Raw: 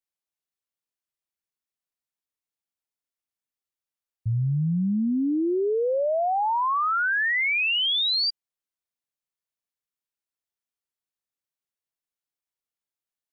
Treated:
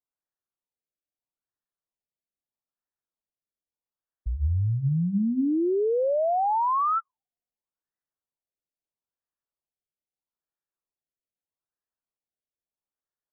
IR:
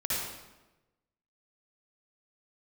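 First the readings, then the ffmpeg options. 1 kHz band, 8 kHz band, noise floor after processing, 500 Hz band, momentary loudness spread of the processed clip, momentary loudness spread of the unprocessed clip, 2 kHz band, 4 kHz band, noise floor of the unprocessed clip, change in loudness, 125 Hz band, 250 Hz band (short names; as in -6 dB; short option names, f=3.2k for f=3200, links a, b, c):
-0.5 dB, n/a, under -85 dBFS, -0.5 dB, 6 LU, 5 LU, under -40 dB, under -40 dB, under -85 dBFS, -2.0 dB, 0.0 dB, -1.5 dB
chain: -af "bandreject=f=60:t=h:w=6,bandreject=f=120:t=h:w=6,bandreject=f=180:t=h:w=6,bandreject=f=240:t=h:w=6,bandreject=f=300:t=h:w=6,afreqshift=-54,afftfilt=real='re*lt(b*sr/1024,690*pow(2000/690,0.5+0.5*sin(2*PI*0.78*pts/sr)))':imag='im*lt(b*sr/1024,690*pow(2000/690,0.5+0.5*sin(2*PI*0.78*pts/sr)))':win_size=1024:overlap=0.75"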